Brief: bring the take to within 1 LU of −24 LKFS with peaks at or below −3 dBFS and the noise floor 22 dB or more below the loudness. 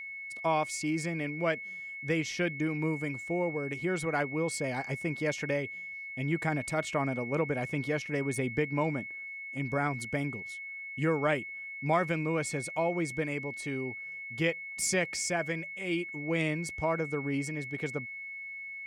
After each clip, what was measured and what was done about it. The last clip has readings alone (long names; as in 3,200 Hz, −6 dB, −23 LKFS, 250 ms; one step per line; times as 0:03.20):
interfering tone 2,200 Hz; level of the tone −39 dBFS; integrated loudness −32.5 LKFS; sample peak −15.0 dBFS; target loudness −24.0 LKFS
→ notch filter 2,200 Hz, Q 30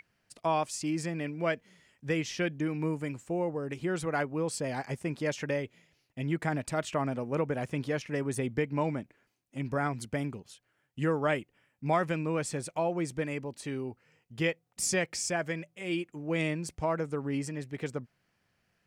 interfering tone none found; integrated loudness −33.0 LKFS; sample peak −15.5 dBFS; target loudness −24.0 LKFS
→ level +9 dB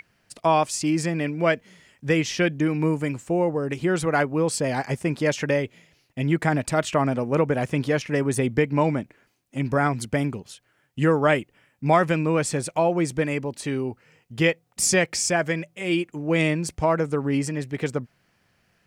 integrated loudness −24.0 LKFS; sample peak −6.5 dBFS; background noise floor −67 dBFS